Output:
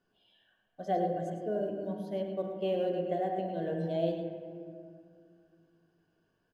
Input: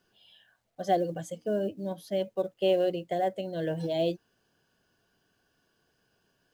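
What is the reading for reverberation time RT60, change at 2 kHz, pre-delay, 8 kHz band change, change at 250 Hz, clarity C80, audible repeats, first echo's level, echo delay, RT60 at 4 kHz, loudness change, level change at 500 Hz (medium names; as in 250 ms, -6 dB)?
2.3 s, -6.0 dB, 3 ms, no reading, -2.0 dB, 4.0 dB, 1, -10.0 dB, 103 ms, 1.3 s, -3.5 dB, -3.5 dB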